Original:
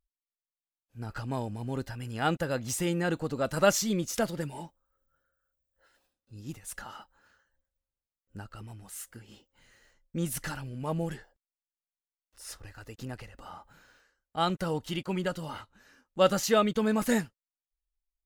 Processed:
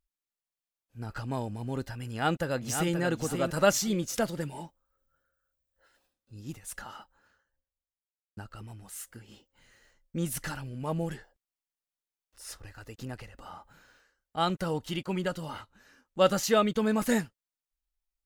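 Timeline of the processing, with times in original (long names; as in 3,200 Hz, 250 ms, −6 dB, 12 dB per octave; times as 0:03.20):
0:02.08–0:02.97: delay throw 530 ms, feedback 25%, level −6 dB
0:06.90–0:08.37: fade out and dull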